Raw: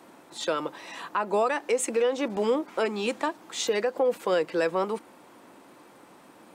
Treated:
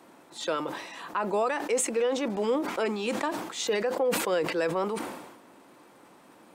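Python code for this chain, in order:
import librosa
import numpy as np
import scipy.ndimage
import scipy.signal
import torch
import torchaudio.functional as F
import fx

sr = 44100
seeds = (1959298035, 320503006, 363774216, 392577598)

y = fx.sustainer(x, sr, db_per_s=53.0)
y = F.gain(torch.from_numpy(y), -2.5).numpy()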